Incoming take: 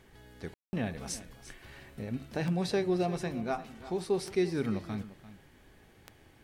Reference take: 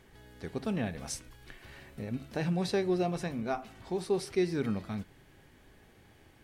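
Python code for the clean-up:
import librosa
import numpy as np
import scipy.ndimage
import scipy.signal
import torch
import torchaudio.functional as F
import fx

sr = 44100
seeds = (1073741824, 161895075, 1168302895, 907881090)

y = fx.fix_declick_ar(x, sr, threshold=10.0)
y = fx.fix_ambience(y, sr, seeds[0], print_start_s=5.9, print_end_s=6.4, start_s=0.54, end_s=0.73)
y = fx.fix_echo_inverse(y, sr, delay_ms=346, level_db=-15.5)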